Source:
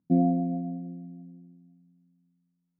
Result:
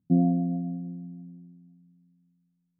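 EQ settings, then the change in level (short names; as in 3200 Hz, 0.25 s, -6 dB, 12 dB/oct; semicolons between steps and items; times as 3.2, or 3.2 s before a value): air absorption 230 m; bell 100 Hz +5 dB 1.3 oct; low shelf 200 Hz +11 dB; -5.0 dB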